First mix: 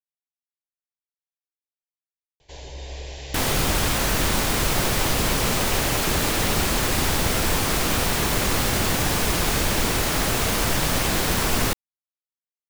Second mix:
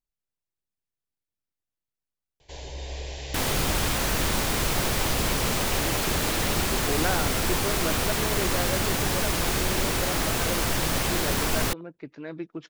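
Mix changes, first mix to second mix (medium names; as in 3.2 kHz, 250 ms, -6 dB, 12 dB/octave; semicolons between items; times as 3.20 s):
speech: unmuted; second sound -3.5 dB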